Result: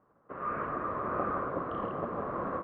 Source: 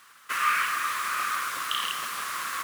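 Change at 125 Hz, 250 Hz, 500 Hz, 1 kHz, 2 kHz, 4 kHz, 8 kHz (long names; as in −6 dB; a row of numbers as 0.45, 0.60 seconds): can't be measured, +16.0 dB, +16.0 dB, −5.5 dB, −16.0 dB, below −30 dB, below −40 dB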